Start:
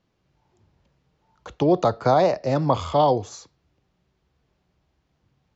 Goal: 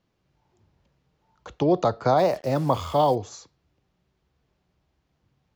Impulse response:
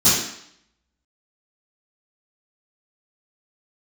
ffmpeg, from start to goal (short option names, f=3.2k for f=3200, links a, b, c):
-filter_complex "[0:a]asplit=3[a][b][c];[a]afade=t=out:st=2.17:d=0.02[d];[b]acrusher=bits=6:mix=0:aa=0.5,afade=t=in:st=2.17:d=0.02,afade=t=out:st=3.14:d=0.02[e];[c]afade=t=in:st=3.14:d=0.02[f];[d][e][f]amix=inputs=3:normalize=0,volume=-2dB"